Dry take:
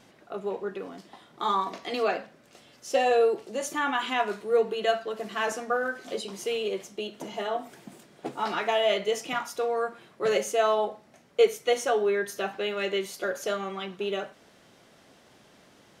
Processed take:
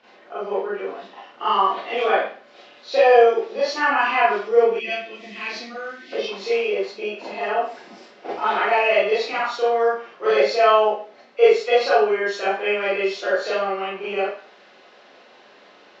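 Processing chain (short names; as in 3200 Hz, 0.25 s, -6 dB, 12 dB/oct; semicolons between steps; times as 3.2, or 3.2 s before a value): nonlinear frequency compression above 2000 Hz 1.5:1; reverb RT60 0.40 s, pre-delay 30 ms, DRR -9.5 dB; spectral gain 4.8–6.13, 370–1800 Hz -15 dB; three-band isolator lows -21 dB, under 330 Hz, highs -20 dB, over 5600 Hz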